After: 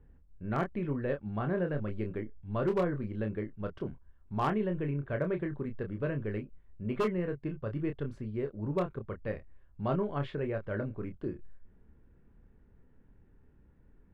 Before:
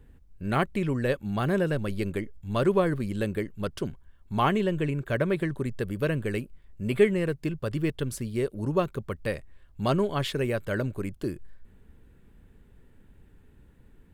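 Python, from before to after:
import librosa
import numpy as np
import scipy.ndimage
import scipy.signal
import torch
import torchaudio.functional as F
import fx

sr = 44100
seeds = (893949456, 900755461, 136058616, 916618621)

y = scipy.signal.sosfilt(scipy.signal.butter(2, 1700.0, 'lowpass', fs=sr, output='sos'), x)
y = 10.0 ** (-15.5 / 20.0) * (np.abs((y / 10.0 ** (-15.5 / 20.0) + 3.0) % 4.0 - 2.0) - 1.0)
y = fx.doubler(y, sr, ms=28.0, db=-6.5)
y = F.gain(torch.from_numpy(y), -6.5).numpy()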